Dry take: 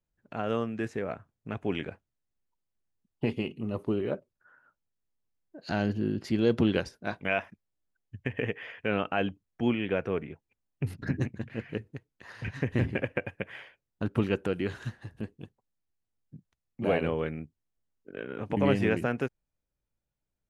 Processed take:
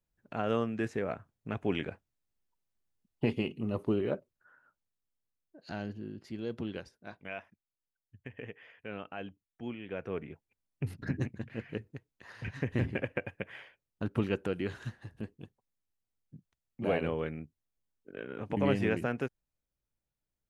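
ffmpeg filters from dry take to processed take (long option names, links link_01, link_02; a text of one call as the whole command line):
ffmpeg -i in.wav -af "volume=9dB,afade=type=out:start_time=3.93:duration=2.14:silence=0.237137,afade=type=in:start_time=9.85:duration=0.47:silence=0.334965" out.wav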